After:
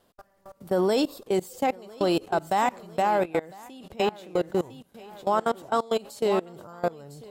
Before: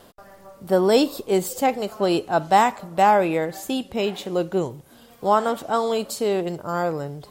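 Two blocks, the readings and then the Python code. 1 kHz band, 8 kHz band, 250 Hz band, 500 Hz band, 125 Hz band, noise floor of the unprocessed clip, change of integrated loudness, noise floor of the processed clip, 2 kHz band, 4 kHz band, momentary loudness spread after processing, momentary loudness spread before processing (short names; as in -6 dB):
-6.0 dB, -9.0 dB, -5.0 dB, -4.5 dB, -6.0 dB, -51 dBFS, -5.0 dB, -66 dBFS, -5.5 dB, -5.5 dB, 16 LU, 9 LU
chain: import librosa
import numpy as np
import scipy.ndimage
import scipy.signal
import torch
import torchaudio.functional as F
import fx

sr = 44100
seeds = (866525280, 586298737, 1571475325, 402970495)

y = fx.echo_feedback(x, sr, ms=1003, feedback_pct=28, wet_db=-12.0)
y = fx.level_steps(y, sr, step_db=22)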